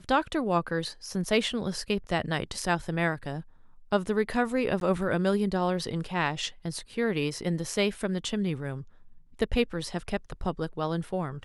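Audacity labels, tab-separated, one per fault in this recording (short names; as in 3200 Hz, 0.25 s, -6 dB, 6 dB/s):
4.800000	4.810000	gap 12 ms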